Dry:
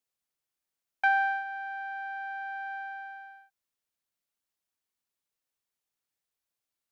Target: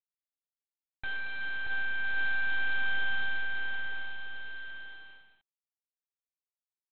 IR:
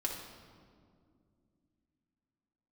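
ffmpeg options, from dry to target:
-filter_complex "[0:a]highpass=530,bandreject=frequency=980:width=11,aecho=1:1:4.4:0.93,acompressor=threshold=-28dB:ratio=6,alimiter=level_in=2.5dB:limit=-24dB:level=0:latency=1:release=447,volume=-2.5dB,aeval=exprs='max(val(0),0)':channel_layout=same,acrusher=bits=10:mix=0:aa=0.000001,aeval=exprs='0.0355*sin(PI/2*2.24*val(0)/0.0355)':channel_layout=same,aecho=1:1:630|1102|1457|1723|1922:0.631|0.398|0.251|0.158|0.1,asplit=2[link_01][link_02];[1:a]atrim=start_sample=2205,afade=type=out:start_time=0.32:duration=0.01,atrim=end_sample=14553,lowpass=3500[link_03];[link_02][link_03]afir=irnorm=-1:irlink=0,volume=-22dB[link_04];[link_01][link_04]amix=inputs=2:normalize=0" -ar 8000 -c:a adpcm_g726 -b:a 24k

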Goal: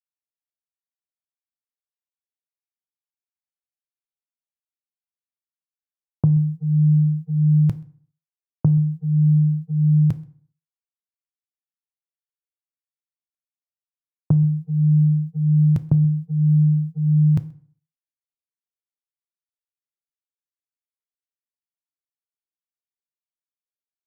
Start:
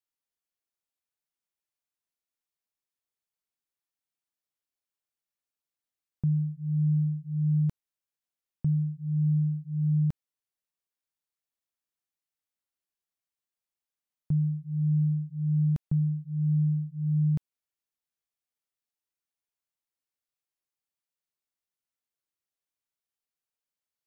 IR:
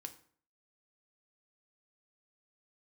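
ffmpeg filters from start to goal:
-filter_complex "[0:a]equalizer=frequency=110:width_type=o:width=0.43:gain=12.5,aecho=1:1:130:0.141,agate=range=-33dB:threshold=-34dB:ratio=16:detection=peak,asplit=2[link_01][link_02];[link_02]lowshelf=frequency=180:gain=-12[link_03];[1:a]atrim=start_sample=2205[link_04];[link_03][link_04]afir=irnorm=-1:irlink=0,volume=7dB[link_05];[link_01][link_05]amix=inputs=2:normalize=0,volume=4.5dB"

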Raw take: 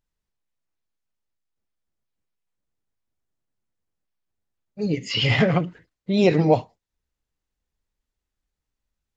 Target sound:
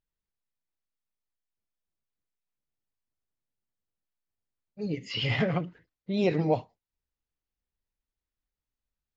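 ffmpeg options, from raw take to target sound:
ffmpeg -i in.wav -af "lowpass=5600,volume=-8dB" out.wav

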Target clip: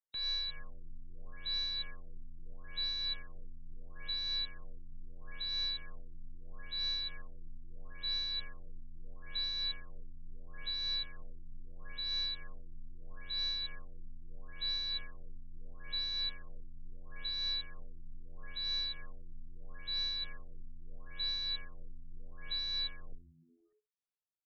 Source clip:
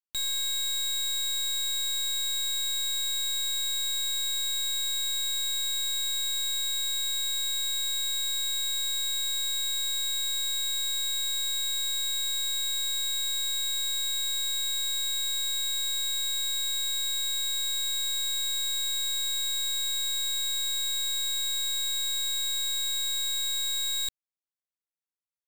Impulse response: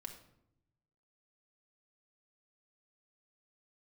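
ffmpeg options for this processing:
-filter_complex "[0:a]afreqshift=-16,asetrate=45938,aresample=44100,tremolo=f=3.2:d=0.33,asplit=2[link_01][link_02];[link_02]asplit=5[link_03][link_04][link_05][link_06][link_07];[link_03]adelay=120,afreqshift=-88,volume=-21dB[link_08];[link_04]adelay=240,afreqshift=-176,volume=-25dB[link_09];[link_05]adelay=360,afreqshift=-264,volume=-29dB[link_10];[link_06]adelay=480,afreqshift=-352,volume=-33dB[link_11];[link_07]adelay=600,afreqshift=-440,volume=-37.1dB[link_12];[link_08][link_09][link_10][link_11][link_12]amix=inputs=5:normalize=0[link_13];[link_01][link_13]amix=inputs=2:normalize=0,afftfilt=real='re*lt(b*sr/1024,310*pow(6700/310,0.5+0.5*sin(2*PI*0.76*pts/sr)))':imag='im*lt(b*sr/1024,310*pow(6700/310,0.5+0.5*sin(2*PI*0.76*pts/sr)))':win_size=1024:overlap=0.75,volume=-3.5dB"

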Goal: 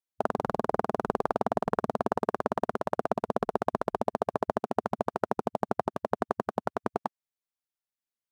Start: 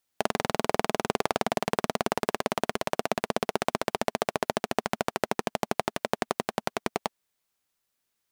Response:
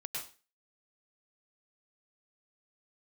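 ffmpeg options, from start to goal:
-af "afwtdn=0.0282"

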